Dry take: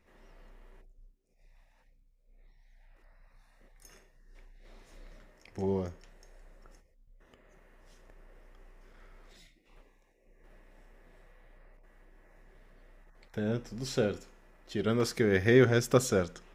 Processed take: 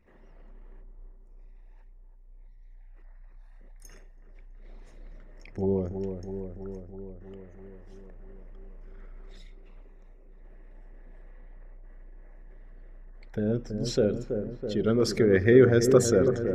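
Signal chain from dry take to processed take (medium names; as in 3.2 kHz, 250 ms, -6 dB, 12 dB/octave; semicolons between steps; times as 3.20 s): resonances exaggerated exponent 1.5; feedback echo behind a low-pass 327 ms, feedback 70%, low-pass 1.2 kHz, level -7 dB; trim +4.5 dB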